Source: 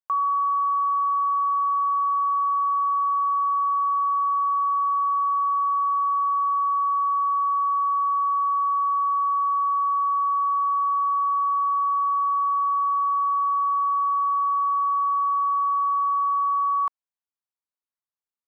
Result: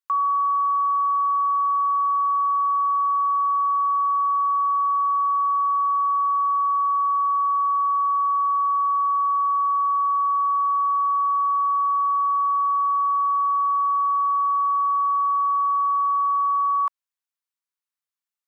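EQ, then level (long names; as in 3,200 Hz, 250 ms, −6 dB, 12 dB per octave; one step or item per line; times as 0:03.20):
high-pass filter 960 Hz 24 dB per octave
+2.5 dB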